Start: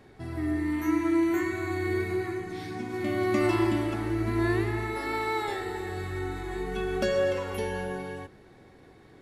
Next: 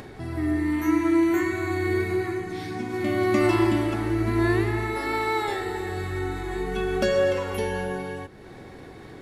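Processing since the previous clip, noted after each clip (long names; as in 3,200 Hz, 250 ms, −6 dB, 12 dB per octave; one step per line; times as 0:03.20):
upward compression, threshold −38 dBFS
level +4 dB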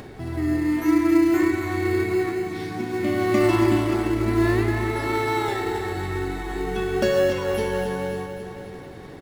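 repeating echo 274 ms, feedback 56%, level −8.5 dB
in parallel at −12 dB: decimation without filtering 19×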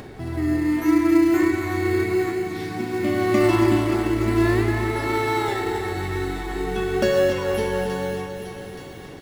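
delay with a high-pass on its return 875 ms, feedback 46%, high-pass 2,500 Hz, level −9.5 dB
level +1 dB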